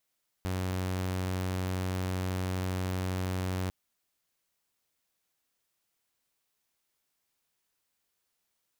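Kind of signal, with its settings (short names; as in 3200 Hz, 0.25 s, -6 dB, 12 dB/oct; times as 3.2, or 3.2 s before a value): tone saw 92.6 Hz -27.5 dBFS 3.25 s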